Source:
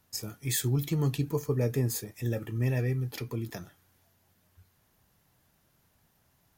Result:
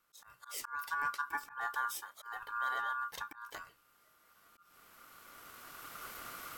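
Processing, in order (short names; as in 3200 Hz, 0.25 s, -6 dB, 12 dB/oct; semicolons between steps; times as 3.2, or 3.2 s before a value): recorder AGC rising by 11 dB/s; auto swell 0.189 s; ring modulator 1300 Hz; gain -5.5 dB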